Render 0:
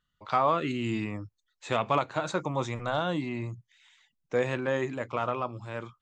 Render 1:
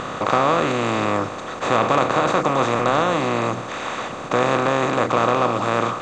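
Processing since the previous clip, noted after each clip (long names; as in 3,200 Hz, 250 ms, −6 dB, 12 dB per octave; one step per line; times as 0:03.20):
compressor on every frequency bin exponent 0.2
level +1.5 dB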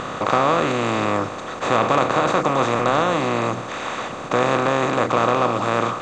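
no processing that can be heard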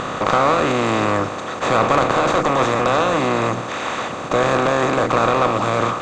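one-sided soft clipper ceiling −14.5 dBFS
level +4 dB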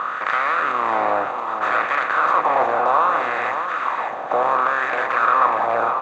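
LFO wah 0.65 Hz 760–1,800 Hz, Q 3.3
on a send: single-tap delay 593 ms −7.5 dB
on the sum: level +6 dB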